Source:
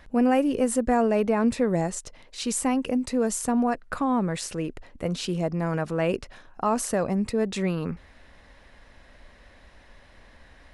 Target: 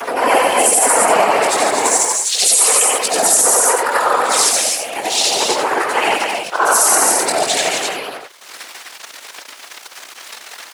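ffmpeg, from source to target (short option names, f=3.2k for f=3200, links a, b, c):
-filter_complex "[0:a]afftfilt=real='re':imag='-im':win_size=8192:overlap=0.75,aemphasis=mode=production:type=riaa,aeval=exprs='val(0)*sin(2*PI*230*n/s)':c=same,asplit=2[a][b];[b]acompressor=threshold=-43dB:ratio=8,volume=-2dB[c];[a][c]amix=inputs=2:normalize=0,flanger=delay=17:depth=6.3:speed=0.35,aeval=exprs='sgn(val(0))*max(abs(val(0))-0.00282,0)':c=same,asplit=2[d][e];[e]aecho=0:1:142.9|256.6:0.501|0.562[f];[d][f]amix=inputs=2:normalize=0,afftfilt=real='hypot(re,im)*cos(2*PI*random(0))':imag='hypot(re,im)*sin(2*PI*random(1))':win_size=512:overlap=0.75,highshelf=f=9.4k:g=-7.5,acompressor=mode=upward:threshold=-45dB:ratio=2.5,highpass=500,alimiter=level_in=30.5dB:limit=-1dB:release=50:level=0:latency=1,volume=-1dB"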